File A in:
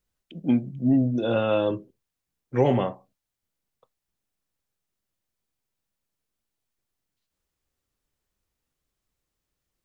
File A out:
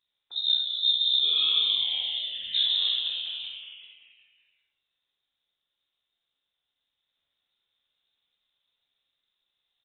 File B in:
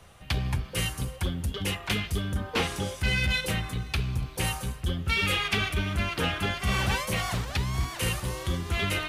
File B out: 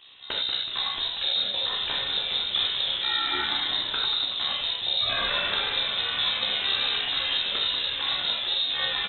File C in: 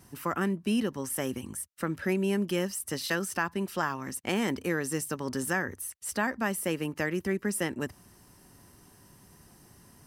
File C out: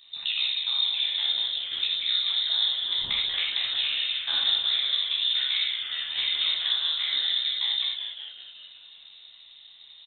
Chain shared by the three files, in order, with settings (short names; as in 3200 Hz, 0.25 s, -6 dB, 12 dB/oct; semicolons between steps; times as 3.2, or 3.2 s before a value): steep high-pass 150 Hz; tilt shelf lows +6 dB, about 840 Hz; compressor, threshold -29 dBFS; AM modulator 66 Hz, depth 75%; echoes that change speed 0.725 s, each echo +3 st, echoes 2, each echo -6 dB; on a send: frequency-shifting echo 0.187 s, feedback 53%, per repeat +130 Hz, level -8 dB; on the sum: non-linear reverb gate 0.12 s flat, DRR -2 dB; inverted band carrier 3900 Hz; gain +4.5 dB